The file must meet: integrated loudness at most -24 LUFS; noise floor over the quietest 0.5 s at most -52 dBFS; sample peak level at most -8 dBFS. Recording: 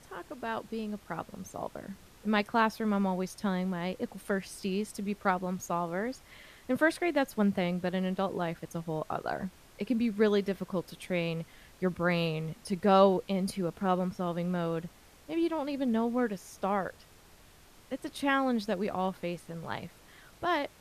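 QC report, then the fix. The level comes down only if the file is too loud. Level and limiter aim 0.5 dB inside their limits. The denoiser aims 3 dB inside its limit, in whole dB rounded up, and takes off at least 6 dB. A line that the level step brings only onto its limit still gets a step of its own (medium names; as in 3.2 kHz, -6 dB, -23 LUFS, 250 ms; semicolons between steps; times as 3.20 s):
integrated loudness -32.0 LUFS: pass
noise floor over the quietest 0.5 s -57 dBFS: pass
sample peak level -11.0 dBFS: pass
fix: none needed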